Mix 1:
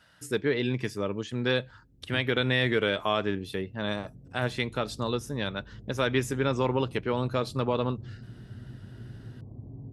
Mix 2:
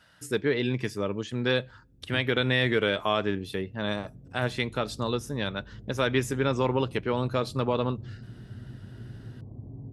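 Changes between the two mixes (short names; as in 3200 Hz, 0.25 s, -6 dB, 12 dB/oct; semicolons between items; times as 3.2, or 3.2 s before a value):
speech: send +7.5 dB; background: send +9.5 dB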